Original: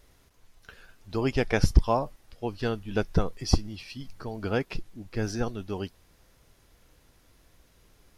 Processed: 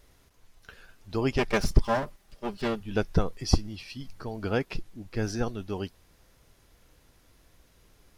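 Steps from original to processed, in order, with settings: 1.38–2.81 s: comb filter that takes the minimum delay 5 ms

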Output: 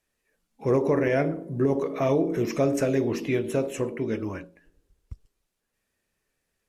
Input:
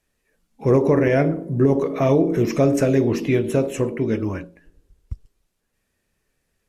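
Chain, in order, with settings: bass shelf 250 Hz -6 dB; trim -4 dB

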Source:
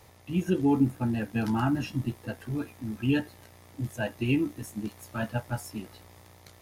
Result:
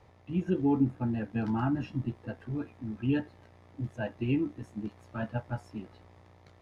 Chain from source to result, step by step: Bessel low-pass 4.9 kHz, order 2; treble shelf 2.7 kHz -10.5 dB; trim -2.5 dB

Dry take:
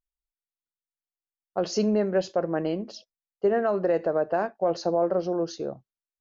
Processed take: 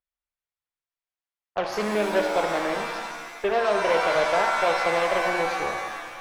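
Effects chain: Chebyshev shaper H 8 -17 dB, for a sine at -14 dBFS; three-band isolator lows -12 dB, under 490 Hz, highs -13 dB, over 3.3 kHz; pitch-shifted reverb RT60 1.5 s, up +7 st, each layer -2 dB, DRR 3.5 dB; trim +2.5 dB

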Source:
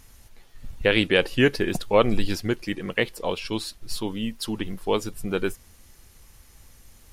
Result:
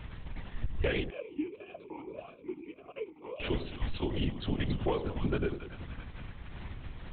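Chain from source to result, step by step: compression 6:1, threshold -36 dBFS, peak gain reduction 21.5 dB; distance through air 190 m; two-band feedback delay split 970 Hz, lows 95 ms, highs 282 ms, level -9.5 dB; LPC vocoder at 8 kHz whisper; 1.10–3.40 s: talking filter a-u 1.7 Hz; trim +7.5 dB

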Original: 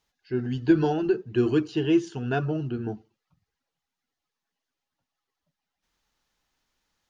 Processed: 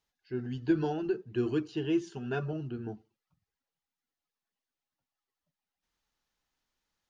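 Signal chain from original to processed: 2.01–2.53 s: comb 5.1 ms, depth 57%; trim -7.5 dB

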